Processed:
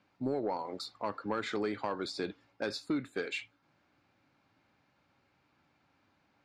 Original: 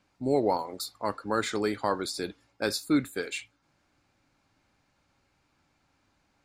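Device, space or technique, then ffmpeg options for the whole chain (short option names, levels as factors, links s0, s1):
AM radio: -af "highpass=100,lowpass=3900,acompressor=threshold=0.0398:ratio=8,asoftclip=type=tanh:threshold=0.075"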